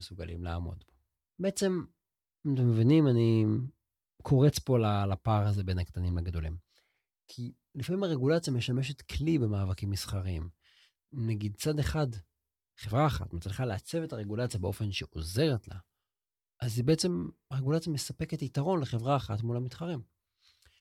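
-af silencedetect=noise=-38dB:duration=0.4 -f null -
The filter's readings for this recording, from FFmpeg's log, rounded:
silence_start: 0.74
silence_end: 1.40 | silence_duration: 0.65
silence_start: 1.83
silence_end: 2.45 | silence_duration: 0.62
silence_start: 3.68
silence_end: 4.25 | silence_duration: 0.57
silence_start: 6.57
silence_end: 7.38 | silence_duration: 0.82
silence_start: 10.48
silence_end: 11.16 | silence_duration: 0.68
silence_start: 12.19
silence_end: 12.81 | silence_duration: 0.62
silence_start: 15.78
silence_end: 16.62 | silence_duration: 0.84
silence_start: 20.00
silence_end: 20.80 | silence_duration: 0.81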